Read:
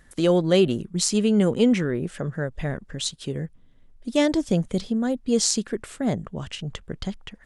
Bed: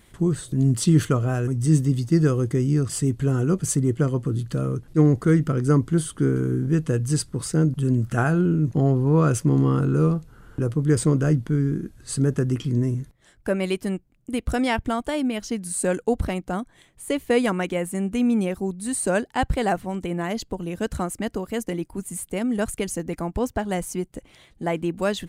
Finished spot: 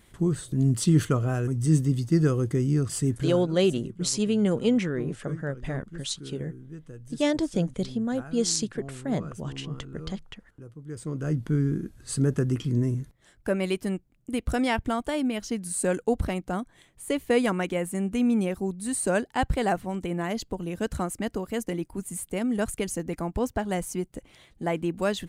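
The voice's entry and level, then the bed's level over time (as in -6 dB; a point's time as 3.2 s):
3.05 s, -4.0 dB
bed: 3.2 s -3 dB
3.53 s -21 dB
10.84 s -21 dB
11.47 s -2.5 dB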